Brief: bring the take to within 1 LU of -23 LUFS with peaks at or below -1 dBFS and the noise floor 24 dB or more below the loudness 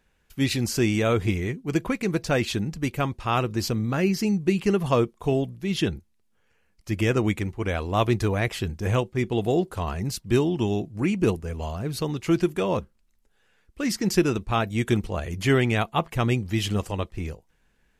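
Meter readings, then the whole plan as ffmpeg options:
loudness -25.5 LUFS; peak -8.0 dBFS; loudness target -23.0 LUFS
-> -af "volume=2.5dB"

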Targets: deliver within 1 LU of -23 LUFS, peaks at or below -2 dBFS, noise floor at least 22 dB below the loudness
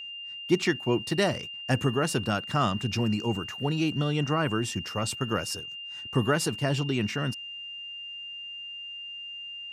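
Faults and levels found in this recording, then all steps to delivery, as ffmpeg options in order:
steady tone 2800 Hz; tone level -37 dBFS; loudness -29.0 LUFS; peak -10.0 dBFS; loudness target -23.0 LUFS
-> -af "bandreject=f=2.8k:w=30"
-af "volume=6dB"

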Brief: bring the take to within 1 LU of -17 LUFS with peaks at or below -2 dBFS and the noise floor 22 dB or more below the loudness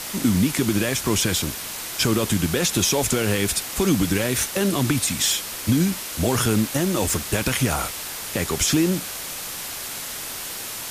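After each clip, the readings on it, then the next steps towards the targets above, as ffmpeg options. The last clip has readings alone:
noise floor -32 dBFS; noise floor target -44 dBFS; loudness -22.0 LUFS; peak -8.0 dBFS; loudness target -17.0 LUFS
-> -af "afftdn=nr=12:nf=-32"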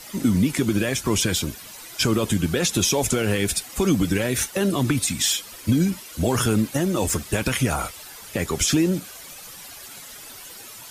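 noise floor -41 dBFS; noise floor target -45 dBFS
-> -af "afftdn=nr=6:nf=-41"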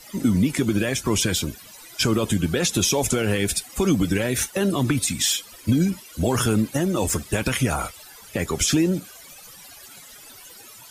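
noise floor -45 dBFS; loudness -22.5 LUFS; peak -8.5 dBFS; loudness target -17.0 LUFS
-> -af "volume=5.5dB"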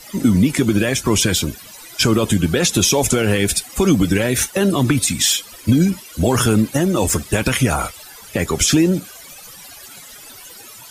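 loudness -17.0 LUFS; peak -3.0 dBFS; noise floor -40 dBFS

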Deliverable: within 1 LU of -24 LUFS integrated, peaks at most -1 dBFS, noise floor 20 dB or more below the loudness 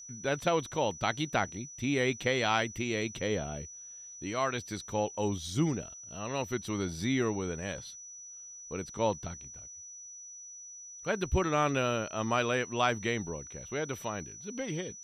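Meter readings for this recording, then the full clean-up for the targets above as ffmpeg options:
steady tone 5900 Hz; tone level -45 dBFS; loudness -32.5 LUFS; peak -13.5 dBFS; loudness target -24.0 LUFS
-> -af "bandreject=f=5.9k:w=30"
-af "volume=8.5dB"

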